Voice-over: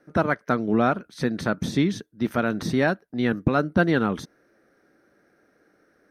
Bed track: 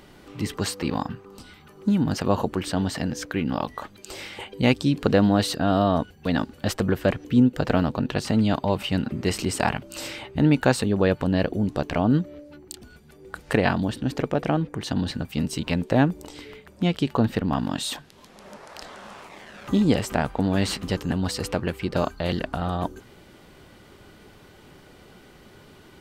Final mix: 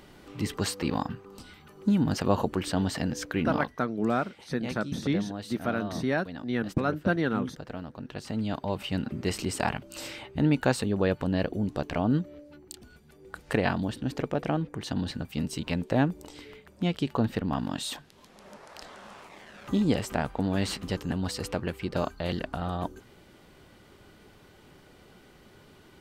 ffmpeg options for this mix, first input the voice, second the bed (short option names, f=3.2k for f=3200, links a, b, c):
-filter_complex "[0:a]adelay=3300,volume=-6dB[a];[1:a]volume=9.5dB,afade=t=out:st=3.51:d=0.3:silence=0.188365,afade=t=in:st=7.9:d=1.19:silence=0.251189[b];[a][b]amix=inputs=2:normalize=0"